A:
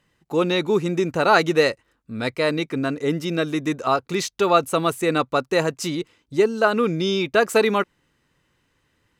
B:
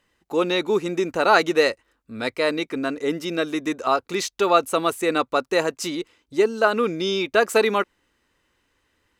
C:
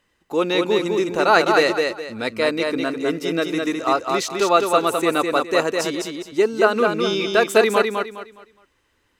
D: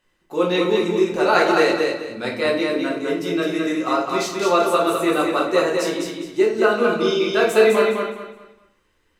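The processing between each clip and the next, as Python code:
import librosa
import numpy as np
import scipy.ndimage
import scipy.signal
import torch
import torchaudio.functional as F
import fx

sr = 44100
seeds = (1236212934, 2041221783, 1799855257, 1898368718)

y1 = fx.peak_eq(x, sr, hz=140.0, db=-13.0, octaves=0.82)
y2 = fx.echo_feedback(y1, sr, ms=207, feedback_pct=29, wet_db=-4)
y2 = y2 * 10.0 ** (1.0 / 20.0)
y3 = fx.room_shoebox(y2, sr, seeds[0], volume_m3=80.0, walls='mixed', distance_m=0.99)
y3 = y3 * 10.0 ** (-5.0 / 20.0)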